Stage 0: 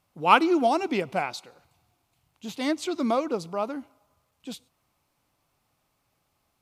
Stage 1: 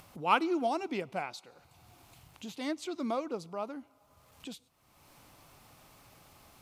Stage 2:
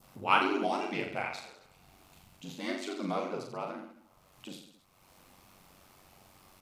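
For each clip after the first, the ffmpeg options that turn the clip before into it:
-af "acompressor=mode=upward:threshold=-30dB:ratio=2.5,volume=-8.5dB"
-af "aeval=exprs='val(0)*sin(2*PI*47*n/s)':c=same,aecho=1:1:40|86|138.9|199.7|269.7:0.631|0.398|0.251|0.158|0.1,adynamicequalizer=threshold=0.00316:dfrequency=2200:dqfactor=0.99:tfrequency=2200:tqfactor=0.99:attack=5:release=100:ratio=0.375:range=3.5:mode=boostabove:tftype=bell"

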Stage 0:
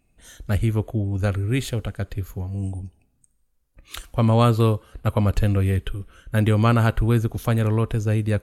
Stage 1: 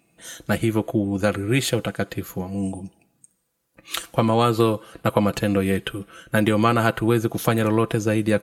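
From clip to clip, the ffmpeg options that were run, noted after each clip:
-af "acompressor=threshold=-19dB:ratio=6,highpass=180,aecho=1:1:6:0.46,volume=7.5dB"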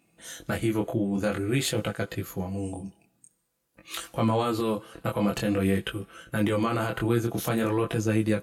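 -af "alimiter=limit=-13dB:level=0:latency=1:release=36,flanger=delay=18:depth=7.7:speed=0.49"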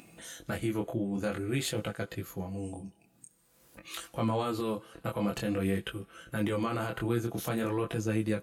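-af "acompressor=mode=upward:threshold=-36dB:ratio=2.5,volume=-5.5dB"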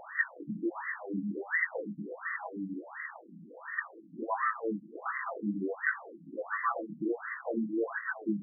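-af "aeval=exprs='val(0)+0.5*0.0224*sgn(val(0))':c=same,lowpass=f=1.9k:t=q:w=11,afftfilt=real='re*between(b*sr/1024,210*pow(1500/210,0.5+0.5*sin(2*PI*1.4*pts/sr))/1.41,210*pow(1500/210,0.5+0.5*sin(2*PI*1.4*pts/sr))*1.41)':imag='im*between(b*sr/1024,210*pow(1500/210,0.5+0.5*sin(2*PI*1.4*pts/sr))/1.41,210*pow(1500/210,0.5+0.5*sin(2*PI*1.4*pts/sr))*1.41)':win_size=1024:overlap=0.75"

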